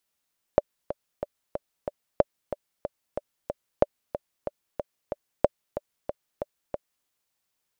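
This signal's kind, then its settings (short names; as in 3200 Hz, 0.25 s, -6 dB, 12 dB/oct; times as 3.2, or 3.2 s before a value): metronome 185 bpm, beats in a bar 5, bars 4, 584 Hz, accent 12 dB -4 dBFS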